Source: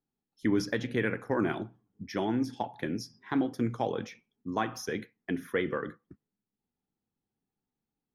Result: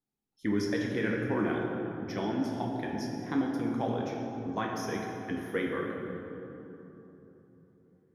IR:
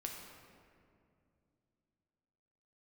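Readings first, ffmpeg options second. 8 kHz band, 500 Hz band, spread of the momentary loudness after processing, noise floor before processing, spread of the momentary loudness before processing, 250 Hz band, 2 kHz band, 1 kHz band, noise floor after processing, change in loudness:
-2.0 dB, 0.0 dB, 13 LU, under -85 dBFS, 9 LU, +0.5 dB, -0.5 dB, 0.0 dB, -68 dBFS, -0.5 dB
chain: -filter_complex "[1:a]atrim=start_sample=2205,asetrate=27783,aresample=44100[a];[0:a][a]afir=irnorm=-1:irlink=0,volume=-2dB"

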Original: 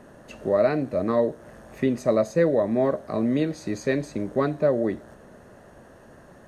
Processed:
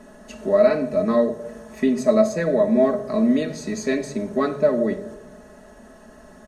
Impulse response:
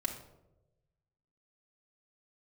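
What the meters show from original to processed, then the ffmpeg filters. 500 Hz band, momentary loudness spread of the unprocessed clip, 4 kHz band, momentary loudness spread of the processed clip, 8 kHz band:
+3.5 dB, 7 LU, +4.5 dB, 11 LU, +7.0 dB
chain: -filter_complex "[0:a]equalizer=f=6.4k:w=0.68:g=5.5,aecho=1:1:4.7:0.66,asplit=2[a][b];[1:a]atrim=start_sample=2205[c];[b][c]afir=irnorm=-1:irlink=0,volume=-1dB[d];[a][d]amix=inputs=2:normalize=0,volume=-5.5dB"

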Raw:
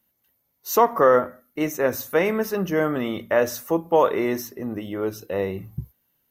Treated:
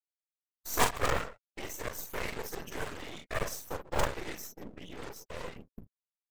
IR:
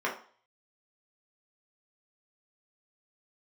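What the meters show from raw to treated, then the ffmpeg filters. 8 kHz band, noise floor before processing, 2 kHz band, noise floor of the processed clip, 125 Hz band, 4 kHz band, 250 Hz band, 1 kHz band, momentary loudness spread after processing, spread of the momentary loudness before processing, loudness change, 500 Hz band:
-3.0 dB, -72 dBFS, -8.0 dB, under -85 dBFS, -8.5 dB, -2.0 dB, -18.5 dB, -12.0 dB, 17 LU, 14 LU, -13.5 dB, -18.0 dB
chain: -filter_complex "[0:a]acrossover=split=480|2000[a][b][c];[a]acompressor=threshold=-37dB:ratio=16[d];[b]acrusher=bits=3:dc=4:mix=0:aa=0.000001[e];[d][e][c]amix=inputs=3:normalize=0,aecho=1:1:41|57|141:0.596|0.188|0.133,afftfilt=real='hypot(re,im)*cos(2*PI*random(0))':imag='hypot(re,im)*sin(2*PI*random(1))':win_size=512:overlap=0.75,acompressor=mode=upward:threshold=-34dB:ratio=2.5,aeval=exprs='0.282*(cos(1*acos(clip(val(0)/0.282,-1,1)))-cos(1*PI/2))+0.0501*(cos(2*acos(clip(val(0)/0.282,-1,1)))-cos(2*PI/2))+0.01*(cos(3*acos(clip(val(0)/0.282,-1,1)))-cos(3*PI/2))':c=same,agate=range=-55dB:threshold=-44dB:ratio=16:detection=peak,afftfilt=real='re*gte(hypot(re,im),0.00355)':imag='im*gte(hypot(re,im),0.00355)':win_size=1024:overlap=0.75,aeval=exprs='max(val(0),0)':c=same,equalizer=f=7.9k:w=2:g=5.5"

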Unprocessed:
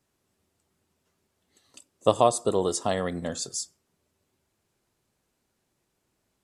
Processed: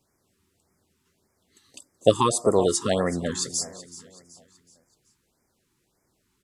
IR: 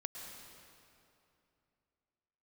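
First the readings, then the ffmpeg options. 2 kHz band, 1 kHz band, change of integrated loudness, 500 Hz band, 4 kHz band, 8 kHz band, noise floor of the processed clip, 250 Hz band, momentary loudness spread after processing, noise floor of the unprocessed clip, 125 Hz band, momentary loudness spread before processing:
+3.0 dB, 0.0 dB, +2.5 dB, +2.5 dB, +4.5 dB, +4.5 dB, -73 dBFS, +4.5 dB, 13 LU, -77 dBFS, +4.5 dB, 10 LU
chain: -af "aecho=1:1:377|754|1131|1508:0.158|0.0666|0.028|0.0117,afftfilt=real='re*(1-between(b*sr/1024,550*pow(3500/550,0.5+0.5*sin(2*PI*1.7*pts/sr))/1.41,550*pow(3500/550,0.5+0.5*sin(2*PI*1.7*pts/sr))*1.41))':imag='im*(1-between(b*sr/1024,550*pow(3500/550,0.5+0.5*sin(2*PI*1.7*pts/sr))/1.41,550*pow(3500/550,0.5+0.5*sin(2*PI*1.7*pts/sr))*1.41))':win_size=1024:overlap=0.75,volume=4.5dB"

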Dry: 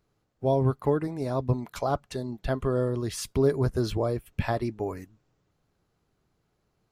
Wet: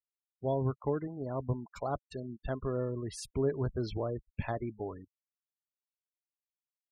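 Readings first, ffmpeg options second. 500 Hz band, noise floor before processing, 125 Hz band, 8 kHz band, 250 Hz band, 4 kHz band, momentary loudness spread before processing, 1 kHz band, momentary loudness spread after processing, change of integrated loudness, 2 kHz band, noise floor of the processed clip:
-7.5 dB, -75 dBFS, -7.5 dB, -9.0 dB, -7.5 dB, -9.5 dB, 8 LU, -7.5 dB, 8 LU, -7.5 dB, -8.5 dB, under -85 dBFS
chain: -af "afftfilt=real='re*gte(hypot(re,im),0.0158)':imag='im*gte(hypot(re,im),0.0158)':win_size=1024:overlap=0.75,volume=-7.5dB"

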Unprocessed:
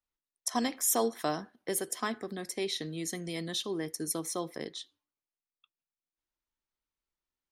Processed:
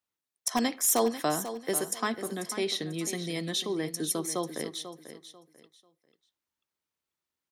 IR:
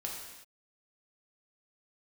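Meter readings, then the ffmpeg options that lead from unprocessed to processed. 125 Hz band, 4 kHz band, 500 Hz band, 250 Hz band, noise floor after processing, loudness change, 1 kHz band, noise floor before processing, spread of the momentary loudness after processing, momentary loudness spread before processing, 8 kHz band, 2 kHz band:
+3.5 dB, +3.5 dB, +3.5 dB, +3.5 dB, under -85 dBFS, +3.5 dB, +3.5 dB, under -85 dBFS, 12 LU, 11 LU, +3.5 dB, +3.5 dB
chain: -filter_complex "[0:a]highpass=f=76:w=0.5412,highpass=f=76:w=1.3066,asplit=2[a][b];[b]aeval=exprs='(mod(7.94*val(0)+1,2)-1)/7.94':c=same,volume=-7dB[c];[a][c]amix=inputs=2:normalize=0,aecho=1:1:492|984|1476:0.266|0.0692|0.018"

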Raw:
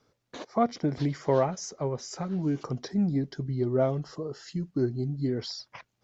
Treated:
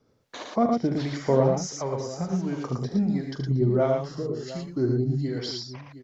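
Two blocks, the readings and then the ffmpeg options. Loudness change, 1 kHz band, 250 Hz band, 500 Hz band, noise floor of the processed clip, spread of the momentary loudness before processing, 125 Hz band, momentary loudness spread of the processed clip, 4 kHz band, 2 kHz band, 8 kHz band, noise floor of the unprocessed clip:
+3.5 dB, +2.0 dB, +3.0 dB, +3.5 dB, -64 dBFS, 11 LU, +4.0 dB, 11 LU, +3.5 dB, +3.5 dB, n/a, -78 dBFS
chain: -filter_complex "[0:a]bandreject=f=50:t=h:w=6,bandreject=f=100:t=h:w=6,bandreject=f=150:t=h:w=6,acrossover=split=590[a][b];[a]aeval=exprs='val(0)*(1-0.7/2+0.7/2*cos(2*PI*1.4*n/s))':c=same[c];[b]aeval=exprs='val(0)*(1-0.7/2-0.7/2*cos(2*PI*1.4*n/s))':c=same[d];[c][d]amix=inputs=2:normalize=0,aecho=1:1:42|75|113|715:0.237|0.376|0.631|0.178,volume=5dB"

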